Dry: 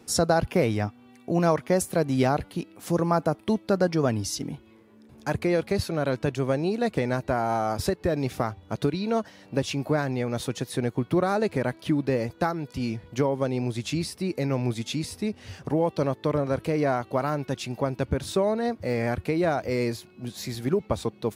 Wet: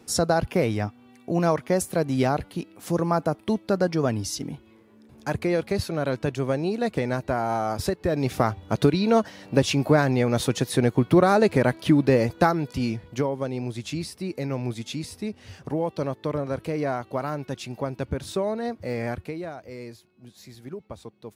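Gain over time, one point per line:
8.03 s 0 dB
8.49 s +6 dB
12.55 s +6 dB
13.37 s -2.5 dB
19.11 s -2.5 dB
19.53 s -12.5 dB

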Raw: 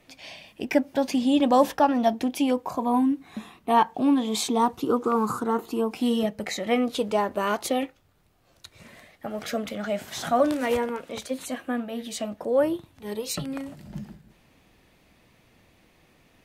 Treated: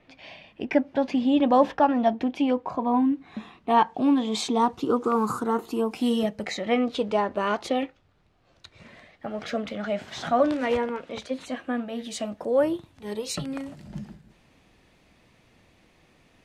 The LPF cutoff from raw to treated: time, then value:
2.88 s 3000 Hz
4.05 s 6300 Hz
4.73 s 6300 Hz
5.23 s 12000 Hz
6.2 s 12000 Hz
6.65 s 4600 Hz
11.46 s 4600 Hz
12.17 s 9200 Hz

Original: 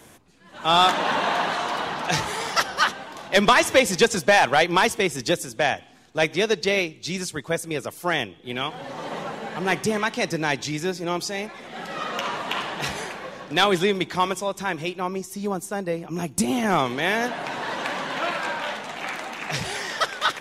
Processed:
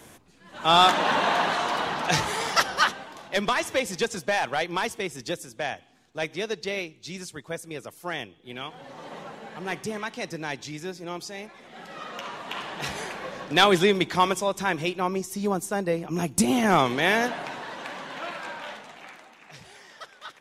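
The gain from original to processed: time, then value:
2.75 s 0 dB
3.44 s -8.5 dB
12.36 s -8.5 dB
13.36 s +1 dB
17.17 s +1 dB
17.7 s -8.5 dB
18.74 s -8.5 dB
19.37 s -19 dB

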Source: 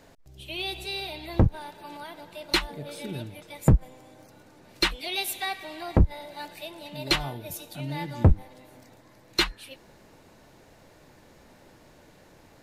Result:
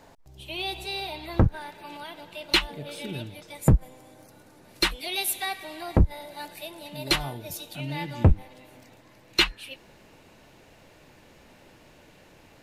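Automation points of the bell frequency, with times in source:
bell +7 dB 0.6 oct
1.07 s 900 Hz
1.98 s 2900 Hz
3.25 s 2900 Hz
3.66 s 11000 Hz
7.26 s 11000 Hz
7.75 s 2700 Hz

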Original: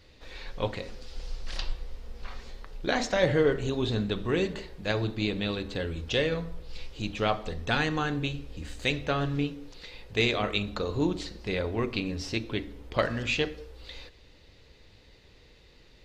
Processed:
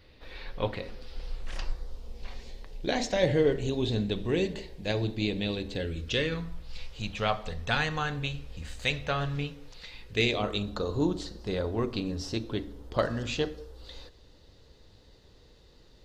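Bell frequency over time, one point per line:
bell -11.5 dB 0.68 oct
1.27 s 7000 Hz
2.23 s 1300 Hz
5.7 s 1300 Hz
6.89 s 320 Hz
9.81 s 320 Hz
10.51 s 2300 Hz

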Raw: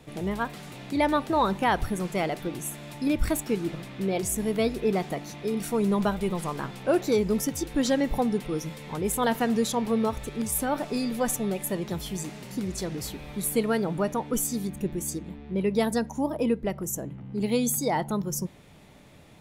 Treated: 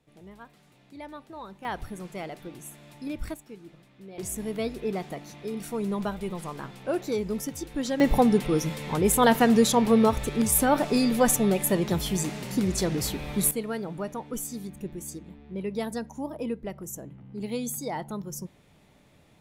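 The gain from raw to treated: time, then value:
-18 dB
from 1.65 s -9 dB
from 3.34 s -17.5 dB
from 4.18 s -5 dB
from 8 s +5.5 dB
from 13.51 s -6.5 dB

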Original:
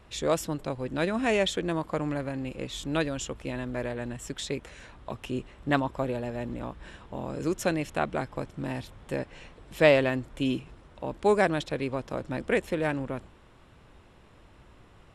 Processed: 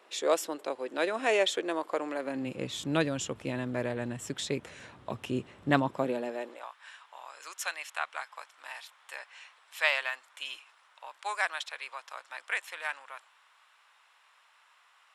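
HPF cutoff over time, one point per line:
HPF 24 dB/oct
2.18 s 350 Hz
2.59 s 92 Hz
5.76 s 92 Hz
6.47 s 380 Hz
6.71 s 970 Hz

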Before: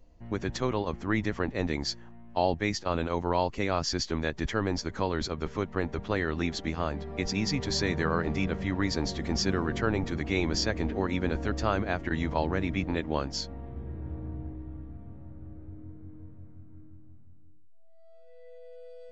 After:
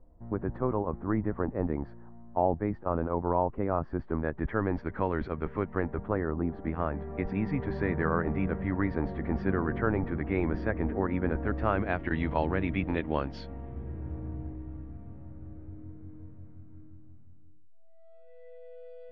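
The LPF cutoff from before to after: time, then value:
LPF 24 dB/oct
3.96 s 1300 Hz
4.89 s 2100 Hz
5.74 s 2100 Hz
6.45 s 1100 Hz
6.75 s 1900 Hz
11.42 s 1900 Hz
12.01 s 3000 Hz

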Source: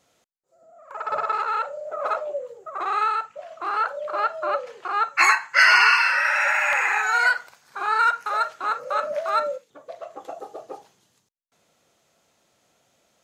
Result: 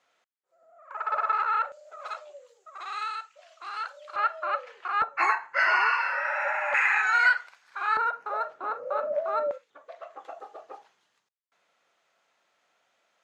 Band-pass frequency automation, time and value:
band-pass, Q 0.92
1600 Hz
from 1.72 s 4700 Hz
from 4.16 s 1900 Hz
from 5.02 s 560 Hz
from 6.74 s 2000 Hz
from 7.97 s 470 Hz
from 9.51 s 1600 Hz

